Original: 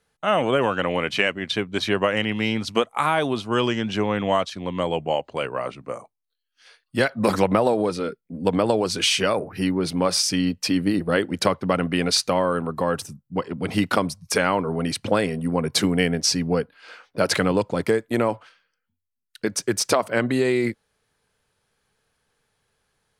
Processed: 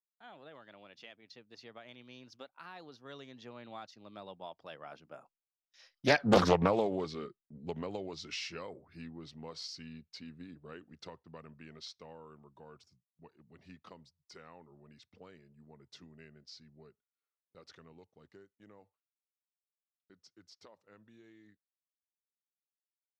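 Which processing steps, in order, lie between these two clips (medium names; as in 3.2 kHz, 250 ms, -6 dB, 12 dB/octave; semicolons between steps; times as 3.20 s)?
Doppler pass-by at 6.29 s, 45 m/s, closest 9.8 m; resonant high shelf 7 kHz -7.5 dB, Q 3; gate with hold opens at -57 dBFS; loudspeaker Doppler distortion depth 0.36 ms; trim -3 dB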